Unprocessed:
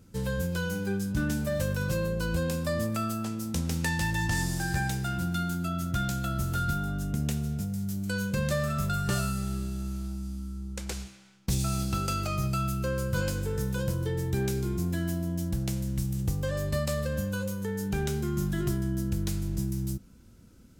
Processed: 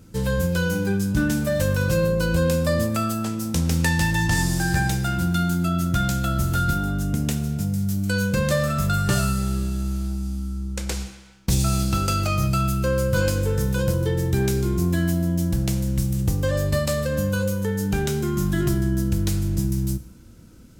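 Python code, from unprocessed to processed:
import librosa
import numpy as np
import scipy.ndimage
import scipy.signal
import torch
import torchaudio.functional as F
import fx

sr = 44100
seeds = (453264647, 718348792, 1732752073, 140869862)

y = fx.rev_fdn(x, sr, rt60_s=0.99, lf_ratio=1.0, hf_ratio=0.65, size_ms=19.0, drr_db=11.0)
y = F.gain(torch.from_numpy(y), 7.0).numpy()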